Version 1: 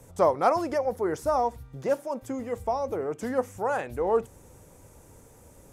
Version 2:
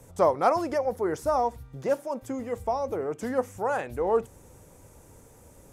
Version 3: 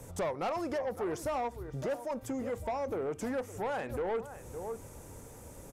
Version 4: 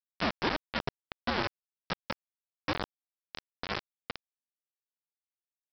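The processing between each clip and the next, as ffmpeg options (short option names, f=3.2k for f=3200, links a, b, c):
-af anull
-filter_complex "[0:a]asplit=2[a][b];[b]adelay=559.8,volume=-17dB,highshelf=f=4k:g=-12.6[c];[a][c]amix=inputs=2:normalize=0,acompressor=threshold=-37dB:ratio=2,asoftclip=type=tanh:threshold=-32dB,volume=3.5dB"
-af "aecho=1:1:110|220|330|440:0.158|0.0666|0.028|0.0117,highpass=f=550:t=q:w=0.5412,highpass=f=550:t=q:w=1.307,lowpass=f=2.6k:t=q:w=0.5176,lowpass=f=2.6k:t=q:w=0.7071,lowpass=f=2.6k:t=q:w=1.932,afreqshift=-380,aresample=11025,acrusher=bits=4:mix=0:aa=0.000001,aresample=44100,volume=3.5dB"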